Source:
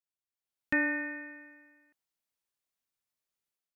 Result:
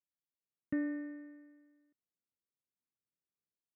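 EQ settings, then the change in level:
moving average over 54 samples
high-pass filter 100 Hz
+1.0 dB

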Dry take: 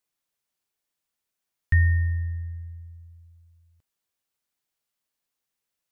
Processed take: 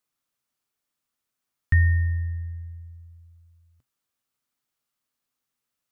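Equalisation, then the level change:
thirty-one-band graphic EQ 125 Hz +7 dB, 250 Hz +7 dB, 1,250 Hz +6 dB
0.0 dB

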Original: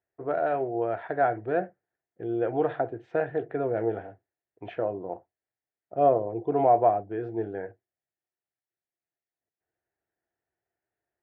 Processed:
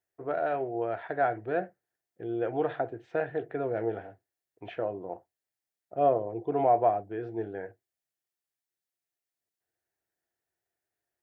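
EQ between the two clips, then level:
high-shelf EQ 2,600 Hz +8.5 dB
−3.5 dB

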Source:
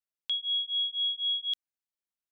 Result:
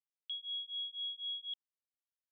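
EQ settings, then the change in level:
resonant band-pass 3,200 Hz, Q 5.7
high-frequency loss of the air 420 metres
spectral tilt +3 dB per octave
−6.0 dB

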